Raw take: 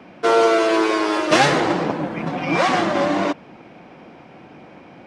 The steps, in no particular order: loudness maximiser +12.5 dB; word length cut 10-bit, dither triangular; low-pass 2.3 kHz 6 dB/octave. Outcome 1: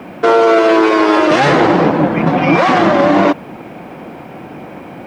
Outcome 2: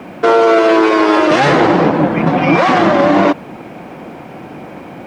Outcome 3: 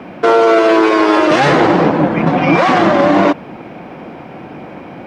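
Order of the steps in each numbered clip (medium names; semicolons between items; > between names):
loudness maximiser > low-pass > word length cut; word length cut > loudness maximiser > low-pass; loudness maximiser > word length cut > low-pass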